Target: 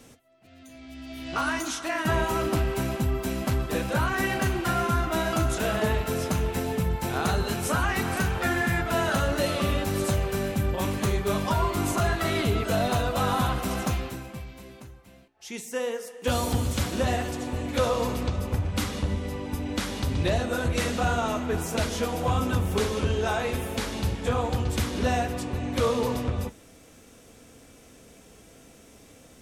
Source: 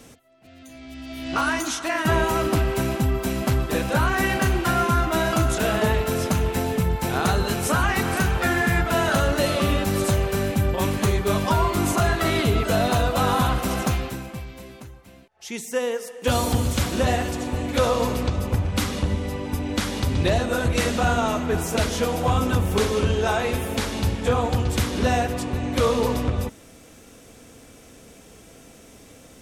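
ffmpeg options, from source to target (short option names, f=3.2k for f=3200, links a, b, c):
-af "flanger=delay=7.8:depth=9.1:regen=-69:speed=0.23:shape=triangular"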